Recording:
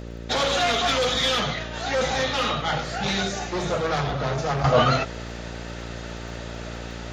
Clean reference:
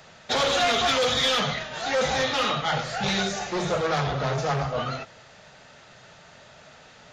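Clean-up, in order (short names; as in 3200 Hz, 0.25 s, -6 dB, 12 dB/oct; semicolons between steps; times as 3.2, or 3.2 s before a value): de-click; de-hum 57.9 Hz, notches 10; gain 0 dB, from 4.64 s -10.5 dB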